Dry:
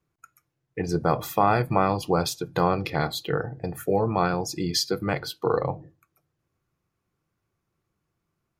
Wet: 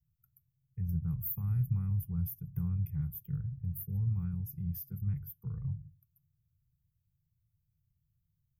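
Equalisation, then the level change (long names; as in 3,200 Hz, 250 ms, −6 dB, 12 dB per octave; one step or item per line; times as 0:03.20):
inverse Chebyshev band-stop filter 270–8,500 Hz, stop band 40 dB
dynamic equaliser 130 Hz, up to −6 dB, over −48 dBFS, Q 2.4
dynamic equaliser 670 Hz, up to −4 dB, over −58 dBFS, Q 0.75
+5.0 dB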